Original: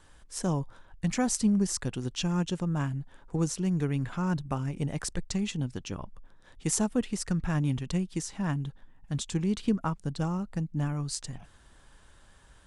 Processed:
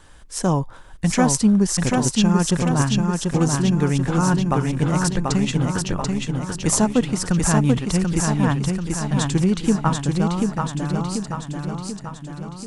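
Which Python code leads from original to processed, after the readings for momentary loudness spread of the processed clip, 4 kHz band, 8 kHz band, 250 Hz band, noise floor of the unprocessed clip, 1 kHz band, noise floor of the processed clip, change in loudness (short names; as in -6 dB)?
10 LU, +10.5 dB, +10.5 dB, +10.5 dB, -57 dBFS, +13.5 dB, -39 dBFS, +10.5 dB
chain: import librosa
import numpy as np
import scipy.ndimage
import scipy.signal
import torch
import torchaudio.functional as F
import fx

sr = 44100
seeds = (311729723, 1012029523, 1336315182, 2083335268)

p1 = fx.fade_out_tail(x, sr, length_s=3.3)
p2 = fx.dynamic_eq(p1, sr, hz=950.0, q=0.92, threshold_db=-49.0, ratio=4.0, max_db=4)
p3 = p2 + fx.echo_feedback(p2, sr, ms=737, feedback_pct=56, wet_db=-3.5, dry=0)
y = F.gain(torch.from_numpy(p3), 8.5).numpy()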